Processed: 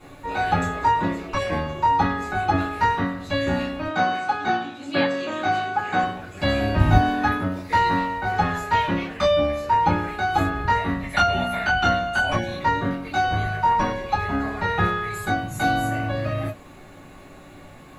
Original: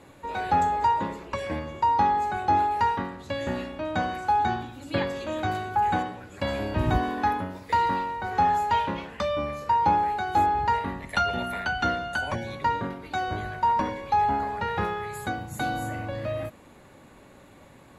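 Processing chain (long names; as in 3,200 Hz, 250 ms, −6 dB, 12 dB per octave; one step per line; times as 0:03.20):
bit-depth reduction 12 bits, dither none
0:03.87–0:06.03: band-pass filter 220–7,300 Hz
convolution reverb, pre-delay 3 ms, DRR −8.5 dB
level −6 dB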